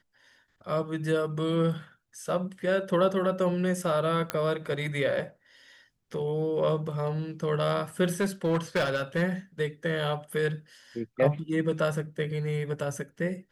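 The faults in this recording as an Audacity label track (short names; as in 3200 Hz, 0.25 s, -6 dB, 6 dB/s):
4.300000	4.300000	pop -12 dBFS
8.210000	9.230000	clipped -21.5 dBFS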